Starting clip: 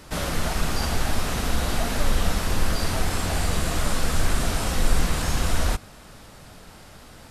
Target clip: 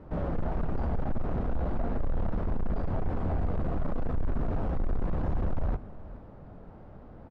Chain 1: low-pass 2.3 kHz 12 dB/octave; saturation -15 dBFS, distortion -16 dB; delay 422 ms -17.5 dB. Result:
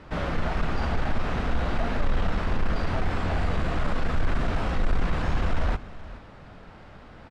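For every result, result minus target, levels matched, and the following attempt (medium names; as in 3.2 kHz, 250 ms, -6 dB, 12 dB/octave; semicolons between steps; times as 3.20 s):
2 kHz band +11.5 dB; saturation: distortion -7 dB
low-pass 720 Hz 12 dB/octave; saturation -15 dBFS, distortion -16 dB; delay 422 ms -17.5 dB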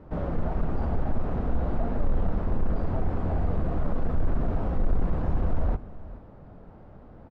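saturation: distortion -8 dB
low-pass 720 Hz 12 dB/octave; saturation -23 dBFS, distortion -9 dB; delay 422 ms -17.5 dB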